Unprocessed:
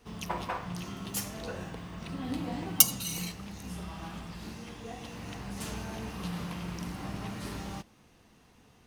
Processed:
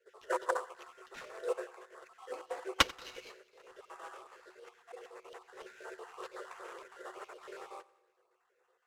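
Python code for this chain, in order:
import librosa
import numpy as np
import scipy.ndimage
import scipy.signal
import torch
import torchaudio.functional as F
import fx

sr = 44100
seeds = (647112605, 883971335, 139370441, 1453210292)

p1 = fx.spec_dropout(x, sr, seeds[0], share_pct=39)
p2 = fx.tilt_eq(p1, sr, slope=-2.5)
p3 = np.sign(p2) * np.maximum(np.abs(p2) - 10.0 ** (-46.0 / 20.0), 0.0)
p4 = p2 + (p3 * librosa.db_to_amplitude(-7.5))
p5 = scipy.signal.sosfilt(scipy.signal.cheby1(6, 9, 360.0, 'highpass', fs=sr, output='sos'), p4)
p6 = fx.sample_hold(p5, sr, seeds[1], rate_hz=9000.0, jitter_pct=20)
p7 = fx.air_absorb(p6, sr, metres=51.0)
p8 = fx.echo_feedback(p7, sr, ms=91, feedback_pct=56, wet_db=-15.5)
p9 = fx.upward_expand(p8, sr, threshold_db=-59.0, expansion=1.5)
y = p9 * librosa.db_to_amplitude(9.5)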